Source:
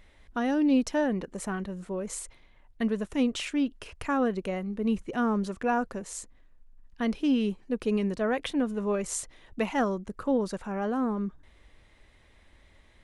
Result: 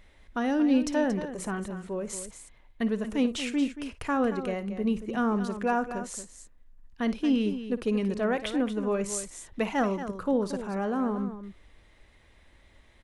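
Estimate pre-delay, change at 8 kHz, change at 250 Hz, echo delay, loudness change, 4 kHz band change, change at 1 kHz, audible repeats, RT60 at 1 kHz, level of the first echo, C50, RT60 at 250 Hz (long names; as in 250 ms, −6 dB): no reverb audible, +0.5 dB, +0.5 dB, 56 ms, +0.5 dB, +0.5 dB, +0.5 dB, 2, no reverb audible, −15.0 dB, no reverb audible, no reverb audible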